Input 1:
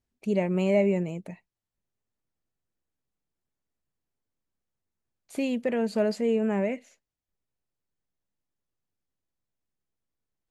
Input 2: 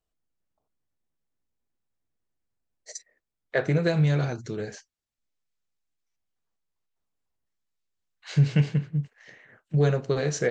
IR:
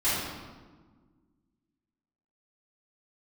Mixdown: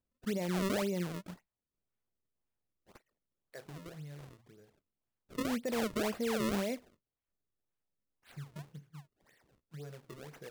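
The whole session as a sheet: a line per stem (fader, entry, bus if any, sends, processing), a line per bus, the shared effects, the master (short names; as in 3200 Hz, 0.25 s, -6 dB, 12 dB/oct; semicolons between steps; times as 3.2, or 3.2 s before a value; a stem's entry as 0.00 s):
-5.5 dB, 0.00 s, no send, dry
-16.0 dB, 0.00 s, no send, compressor 1.5:1, threshold -44 dBFS, peak gain reduction 10.5 dB; auto duck -18 dB, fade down 1.05 s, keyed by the first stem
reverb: off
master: decimation with a swept rate 32×, swing 160% 1.9 Hz; limiter -27 dBFS, peak gain reduction 9 dB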